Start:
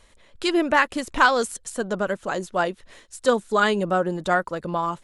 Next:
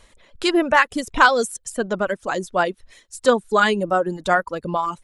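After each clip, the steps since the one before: reverb removal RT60 1.1 s; trim +3.5 dB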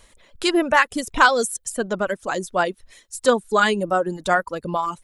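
treble shelf 8.6 kHz +9 dB; trim -1 dB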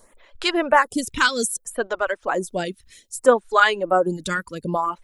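lamp-driven phase shifter 0.63 Hz; trim +3 dB

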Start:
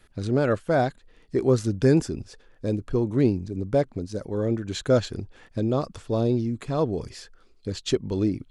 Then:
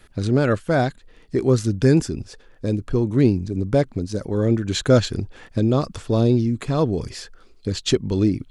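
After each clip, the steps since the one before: dynamic bell 650 Hz, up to -5 dB, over -35 dBFS, Q 0.71; in parallel at +1 dB: gain riding 2 s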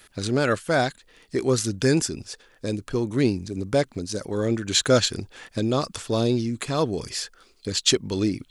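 tilt EQ +2.5 dB/octave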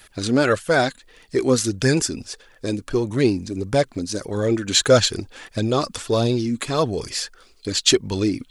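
flange 1.6 Hz, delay 1 ms, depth 3.3 ms, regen +45%; trim +7.5 dB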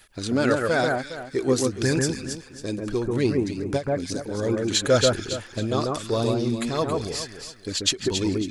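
echo whose repeats swap between lows and highs 137 ms, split 1.9 kHz, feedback 53%, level -2 dB; endings held to a fixed fall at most 260 dB/s; trim -5 dB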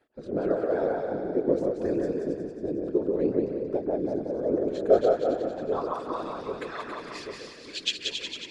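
band-pass sweep 440 Hz -> 2.7 kHz, 4.77–7.47 s; whisper effect; two-band feedback delay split 420 Hz, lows 788 ms, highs 182 ms, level -4 dB

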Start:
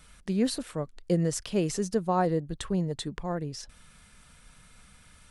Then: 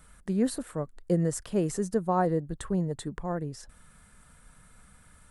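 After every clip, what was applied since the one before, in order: high-order bell 3.7 kHz -8.5 dB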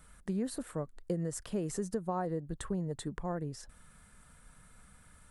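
compression 6:1, threshold -28 dBFS, peak gain reduction 8 dB; trim -2.5 dB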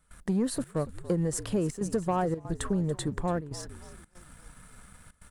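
frequency-shifting echo 285 ms, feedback 52%, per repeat -56 Hz, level -17 dB; trance gate ".xxxxx.xxxxxxxxx" 141 bpm -12 dB; waveshaping leveller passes 1; trim +4 dB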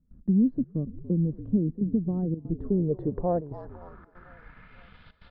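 low-pass sweep 250 Hz -> 3.7 kHz, 2.41–5.12 s; thinning echo 503 ms, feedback 70%, high-pass 530 Hz, level -21.5 dB; resampled via 11.025 kHz

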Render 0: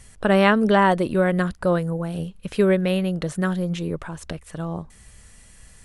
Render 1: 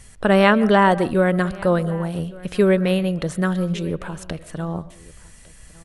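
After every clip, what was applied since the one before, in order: delay 1154 ms -22.5 dB; reverberation RT60 0.35 s, pre-delay 90 ms, DRR 16.5 dB; trim +2 dB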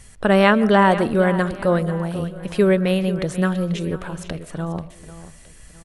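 delay 489 ms -14 dB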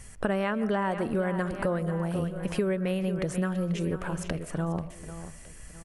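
peaking EQ 3.8 kHz -7.5 dB 0.49 oct; compression 6:1, threshold -24 dBFS, peak gain reduction 14 dB; trim -1 dB

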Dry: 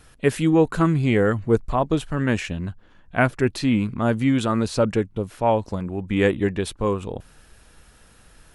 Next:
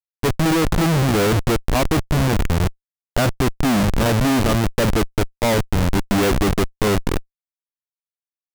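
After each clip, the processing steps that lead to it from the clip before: local Wiener filter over 25 samples; spring tank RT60 2.1 s, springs 34 ms, chirp 25 ms, DRR 19.5 dB; Schmitt trigger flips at -26.5 dBFS; trim +6.5 dB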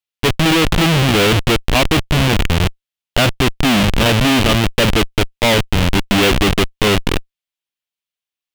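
peaking EQ 3 kHz +10.5 dB 1.1 oct; trim +3 dB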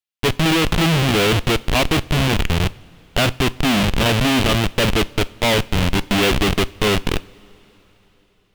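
two-slope reverb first 0.37 s, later 4.3 s, from -19 dB, DRR 16 dB; trim -3.5 dB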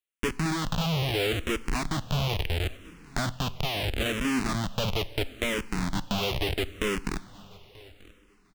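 compression 5:1, threshold -23 dBFS, peak gain reduction 9.5 dB; feedback delay 936 ms, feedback 18%, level -23.5 dB; barber-pole phaser -0.75 Hz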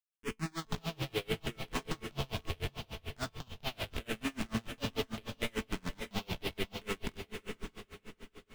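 feedback comb 220 Hz, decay 0.38 s, harmonics all, mix 70%; echo that smears into a reverb 563 ms, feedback 41%, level -5 dB; logarithmic tremolo 6.8 Hz, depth 32 dB; trim +4 dB

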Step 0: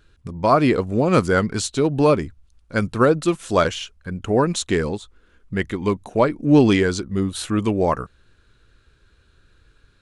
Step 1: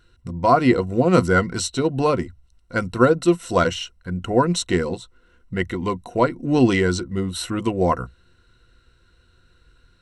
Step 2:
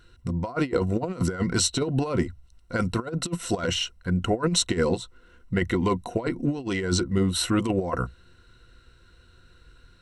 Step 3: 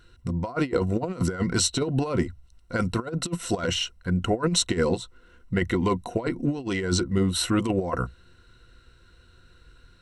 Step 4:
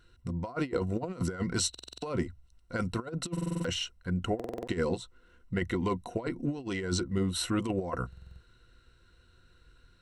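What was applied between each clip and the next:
rippled EQ curve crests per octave 2, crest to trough 11 dB; trim -1.5 dB
compressor with a negative ratio -22 dBFS, ratio -0.5; trim -1.5 dB
no audible change
buffer glitch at 1.70/3.32/4.35/8.08 s, samples 2048, times 6; trim -6.5 dB

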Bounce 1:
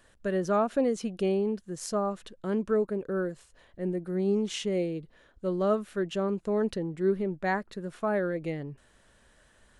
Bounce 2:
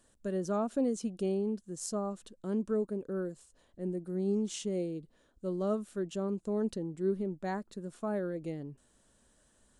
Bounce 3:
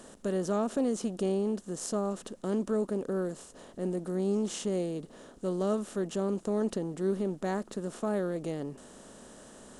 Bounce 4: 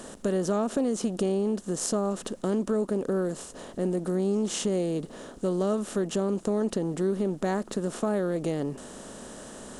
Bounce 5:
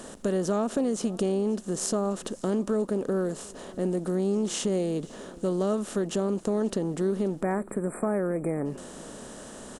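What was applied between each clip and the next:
graphic EQ 250/2000/8000 Hz +6/-7/+9 dB; trim -7.5 dB
spectral levelling over time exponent 0.6
compression 2.5:1, threshold -33 dBFS, peak gain reduction 6.5 dB; trim +8 dB
spectral selection erased 7.42–8.65 s, 2.5–7.4 kHz; delay 534 ms -22.5 dB

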